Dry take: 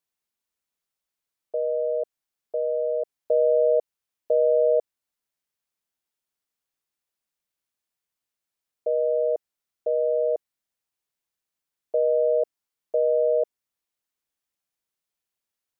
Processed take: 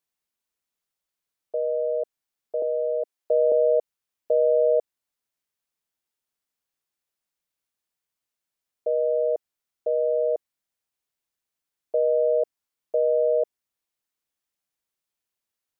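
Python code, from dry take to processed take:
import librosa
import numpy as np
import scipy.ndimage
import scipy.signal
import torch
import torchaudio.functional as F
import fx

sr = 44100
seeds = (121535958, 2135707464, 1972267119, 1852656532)

y = fx.highpass(x, sr, hz=280.0, slope=24, at=(2.62, 3.52))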